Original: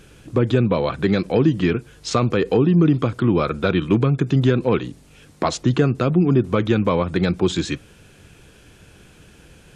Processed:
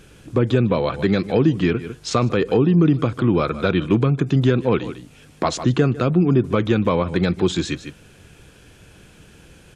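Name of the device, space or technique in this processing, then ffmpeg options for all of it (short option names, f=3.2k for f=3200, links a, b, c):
ducked delay: -filter_complex "[0:a]asplit=3[a][b][c];[b]adelay=152,volume=-9dB[d];[c]apad=whole_len=437048[e];[d][e]sidechaincompress=threshold=-30dB:ratio=8:attack=16:release=127[f];[a][f]amix=inputs=2:normalize=0"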